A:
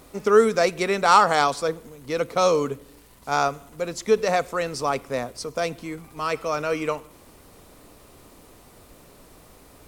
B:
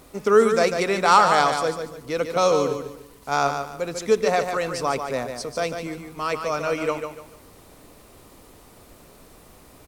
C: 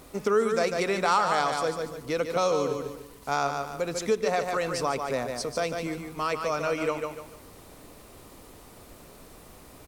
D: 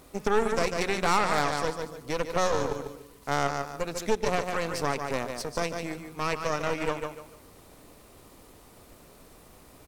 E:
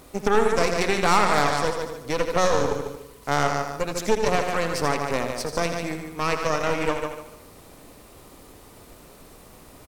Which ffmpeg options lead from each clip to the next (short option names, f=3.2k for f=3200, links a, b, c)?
-af "aecho=1:1:146|292|438|584:0.447|0.138|0.0429|0.0133"
-af "acompressor=threshold=-26dB:ratio=2"
-af "aeval=exprs='0.316*(cos(1*acos(clip(val(0)/0.316,-1,1)))-cos(1*PI/2))+0.0355*(cos(3*acos(clip(val(0)/0.316,-1,1)))-cos(3*PI/2))+0.0447*(cos(6*acos(clip(val(0)/0.316,-1,1)))-cos(6*PI/2))':c=same"
-af "aecho=1:1:82:0.376,volume=4.5dB"